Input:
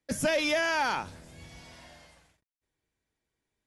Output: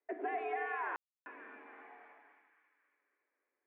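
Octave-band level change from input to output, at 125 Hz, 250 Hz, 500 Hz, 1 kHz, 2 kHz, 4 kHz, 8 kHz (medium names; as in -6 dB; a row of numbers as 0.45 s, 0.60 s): under -40 dB, -15.5 dB, -12.0 dB, -6.0 dB, -11.5 dB, under -30 dB, under -40 dB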